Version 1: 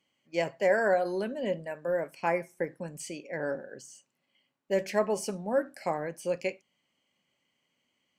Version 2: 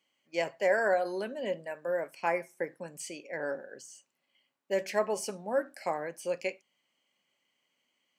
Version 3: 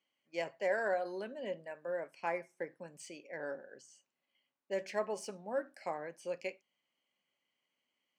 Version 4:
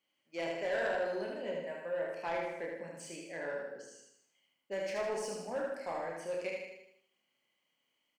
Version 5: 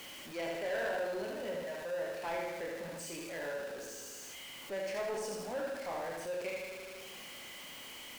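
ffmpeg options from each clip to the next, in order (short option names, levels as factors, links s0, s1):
-af "highpass=f=410:p=1"
-af "adynamicsmooth=sensitivity=7:basefreq=7700,volume=0.473"
-filter_complex "[0:a]asplit=2[s0][s1];[s1]aecho=0:1:30|69|119.7|185.6|271.3:0.631|0.398|0.251|0.158|0.1[s2];[s0][s2]amix=inputs=2:normalize=0,asoftclip=type=tanh:threshold=0.0316,asplit=2[s3][s4];[s4]aecho=0:1:78|156|234|312|390|468:0.631|0.303|0.145|0.0698|0.0335|0.0161[s5];[s3][s5]amix=inputs=2:normalize=0"
-af "aeval=exprs='val(0)+0.5*0.0119*sgn(val(0))':c=same,volume=0.668"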